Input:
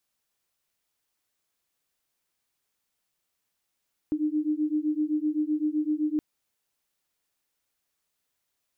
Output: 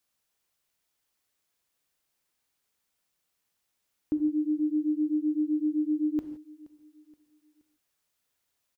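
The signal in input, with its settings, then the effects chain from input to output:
two tones that beat 300 Hz, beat 7.8 Hz, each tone −27 dBFS 2.07 s
repeating echo 474 ms, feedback 43%, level −23 dB
reverb whose tail is shaped and stops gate 190 ms flat, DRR 8.5 dB

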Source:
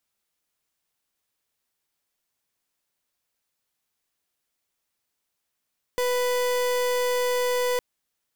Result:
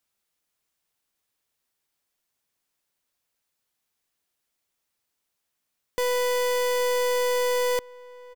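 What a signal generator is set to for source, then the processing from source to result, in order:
pulse wave 495 Hz, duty 37% −24 dBFS 1.81 s
slap from a distant wall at 140 metres, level −20 dB

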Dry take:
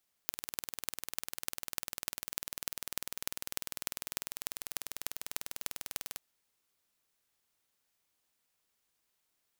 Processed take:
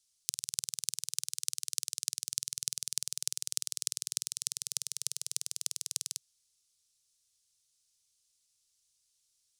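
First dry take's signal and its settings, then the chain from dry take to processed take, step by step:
impulse train 20.1 per second, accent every 6, −4.5 dBFS 5.89 s
drawn EQ curve 130 Hz 0 dB, 220 Hz −17 dB, 450 Hz −11 dB, 720 Hz −22 dB, 1,200 Hz −12 dB, 1,800 Hz −12 dB, 4,100 Hz +6 dB, 5,800 Hz +11 dB, 10,000 Hz +8 dB, 15,000 Hz −11 dB

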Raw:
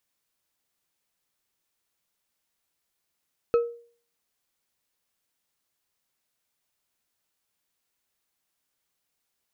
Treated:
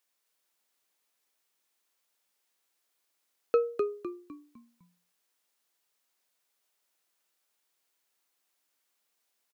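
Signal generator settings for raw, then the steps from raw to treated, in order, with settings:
struck glass bar, lowest mode 471 Hz, decay 0.46 s, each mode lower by 11.5 dB, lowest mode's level −15 dB
high-pass filter 330 Hz 12 dB per octave
echo with shifted repeats 253 ms, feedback 37%, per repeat −59 Hz, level −4.5 dB

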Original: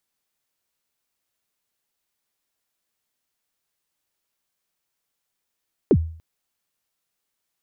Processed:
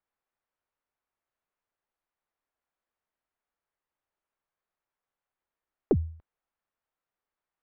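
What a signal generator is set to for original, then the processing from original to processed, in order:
synth kick length 0.29 s, from 480 Hz, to 81 Hz, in 58 ms, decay 0.49 s, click off, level −9 dB
stylus tracing distortion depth 0.057 ms
low-pass filter 1,400 Hz 12 dB per octave
parametric band 170 Hz −8.5 dB 2.8 octaves

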